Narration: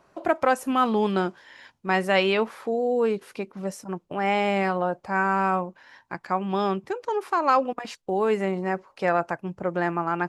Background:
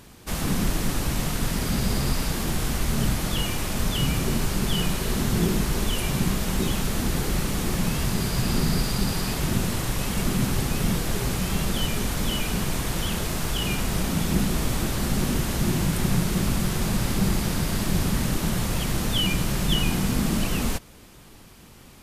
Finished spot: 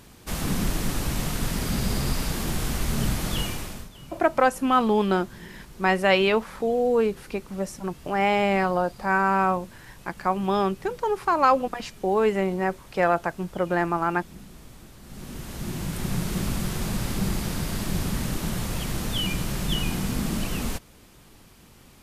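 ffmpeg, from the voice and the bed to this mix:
ffmpeg -i stem1.wav -i stem2.wav -filter_complex "[0:a]adelay=3950,volume=1.5dB[link_01];[1:a]volume=16.5dB,afade=type=out:start_time=3.4:duration=0.49:silence=0.1,afade=type=in:start_time=15.03:duration=1.33:silence=0.125893[link_02];[link_01][link_02]amix=inputs=2:normalize=0" out.wav

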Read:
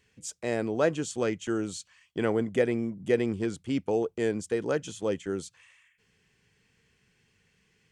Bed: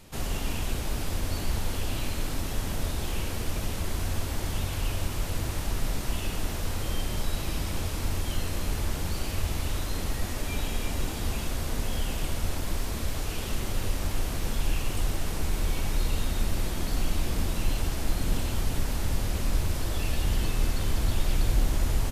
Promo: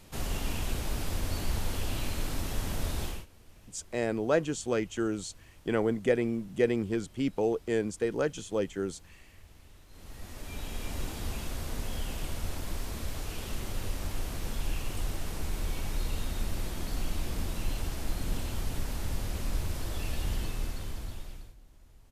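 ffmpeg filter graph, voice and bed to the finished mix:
ffmpeg -i stem1.wav -i stem2.wav -filter_complex "[0:a]adelay=3500,volume=-1dB[link_01];[1:a]volume=17.5dB,afade=type=out:start_time=3.03:duration=0.23:silence=0.0707946,afade=type=in:start_time=9.88:duration=1.1:silence=0.1,afade=type=out:start_time=20.29:duration=1.26:silence=0.0473151[link_02];[link_01][link_02]amix=inputs=2:normalize=0" out.wav

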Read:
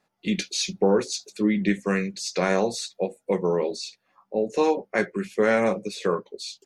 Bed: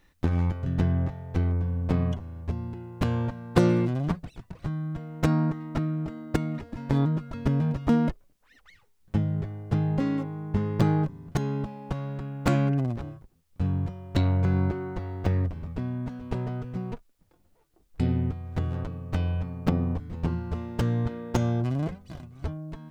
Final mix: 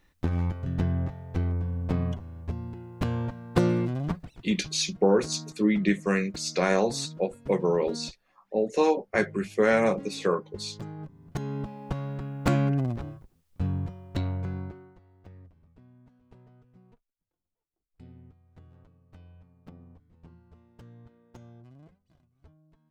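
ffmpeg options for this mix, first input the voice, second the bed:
ffmpeg -i stem1.wav -i stem2.wav -filter_complex "[0:a]adelay=4200,volume=-1dB[link_01];[1:a]volume=14dB,afade=type=out:start_time=4.18:duration=0.62:silence=0.188365,afade=type=in:start_time=10.97:duration=0.87:silence=0.149624,afade=type=out:start_time=13.41:duration=1.58:silence=0.0630957[link_02];[link_01][link_02]amix=inputs=2:normalize=0" out.wav

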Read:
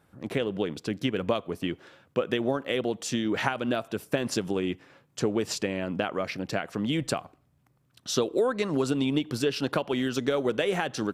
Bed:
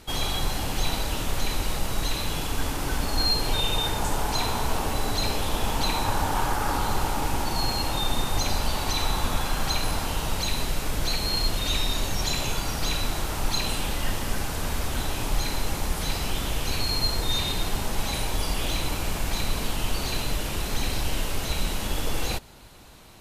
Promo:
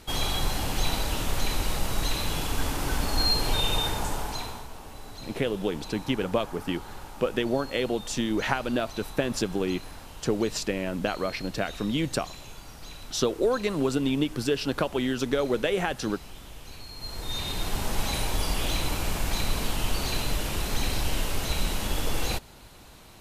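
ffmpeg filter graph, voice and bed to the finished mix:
ffmpeg -i stem1.wav -i stem2.wav -filter_complex "[0:a]adelay=5050,volume=0.5dB[link_01];[1:a]volume=15.5dB,afade=type=out:start_time=3.75:duration=0.93:silence=0.158489,afade=type=in:start_time=16.96:duration=0.95:silence=0.158489[link_02];[link_01][link_02]amix=inputs=2:normalize=0" out.wav

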